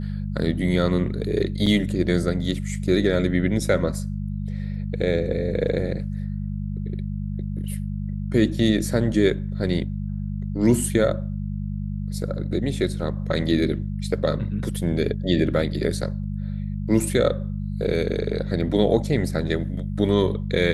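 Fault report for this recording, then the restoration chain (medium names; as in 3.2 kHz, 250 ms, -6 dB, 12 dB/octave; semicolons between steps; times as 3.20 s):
hum 50 Hz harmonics 4 -28 dBFS
1.66–1.67 s: dropout 5.1 ms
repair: de-hum 50 Hz, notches 4; interpolate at 1.66 s, 5.1 ms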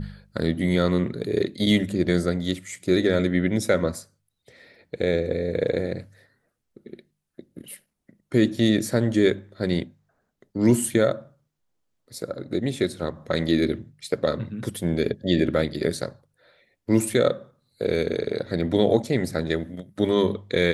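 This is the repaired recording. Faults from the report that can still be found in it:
nothing left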